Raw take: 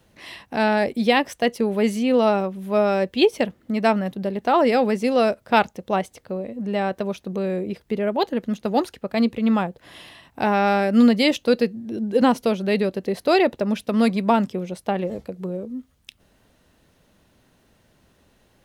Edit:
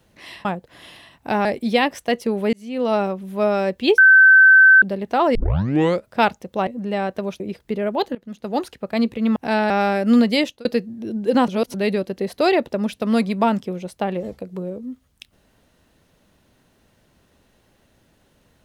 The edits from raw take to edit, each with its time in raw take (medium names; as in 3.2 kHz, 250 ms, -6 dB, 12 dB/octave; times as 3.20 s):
0.45–0.79 s: swap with 9.57–10.57 s
1.87–2.34 s: fade in linear
3.32–4.16 s: bleep 1.54 kHz -6.5 dBFS
4.69 s: tape start 0.70 s
6.01–6.49 s: delete
7.22–7.61 s: delete
8.36–8.92 s: fade in, from -20.5 dB
11.25–11.52 s: fade out
12.35–12.61 s: reverse